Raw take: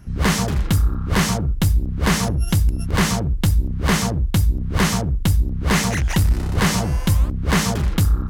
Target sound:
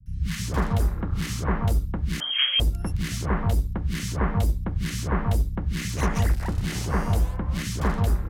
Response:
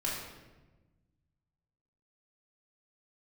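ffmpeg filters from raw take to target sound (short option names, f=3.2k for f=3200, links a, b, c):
-filter_complex "[0:a]acrossover=split=190|1000|2000[a][b][c][d];[d]alimiter=limit=-22dB:level=0:latency=1:release=142[e];[a][b][c][e]amix=inputs=4:normalize=0,acrossover=split=170|1900[f][g][h];[h]adelay=60[i];[g]adelay=320[j];[f][j][i]amix=inputs=3:normalize=0,asettb=1/sr,asplit=3[k][l][m];[k]atrim=end=2.204[n];[l]atrim=start=2.2:end=2.6,asetpts=PTS-STARTPTS,afade=t=in:d=0.004:c=qsin,afade=t=out:st=0.396:d=0.004:c=qsin,lowpass=f=2.8k:t=q:w=0.5098,lowpass=f=2.8k:t=q:w=0.6013,lowpass=f=2.8k:t=q:w=0.9,lowpass=f=2.8k:t=q:w=2.563,afreqshift=-3300[o];[m]atrim=start=2.596[p];[n][o]acrossfade=d=0.004:c1=hsin:c2=qsin[q];[q][p]acrossfade=d=0.004:c1=qsin:c2=hsin,volume=-5dB"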